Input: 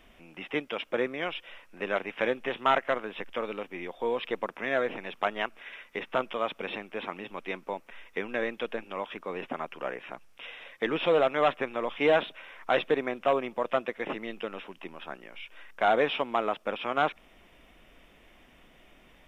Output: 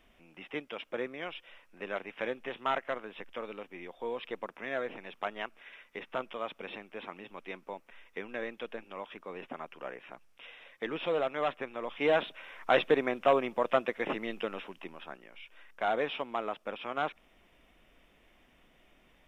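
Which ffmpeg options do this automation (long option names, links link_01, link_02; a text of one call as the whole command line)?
ffmpeg -i in.wav -af "volume=0.5dB,afade=type=in:start_time=11.78:duration=0.96:silence=0.421697,afade=type=out:start_time=14.44:duration=0.8:silence=0.446684" out.wav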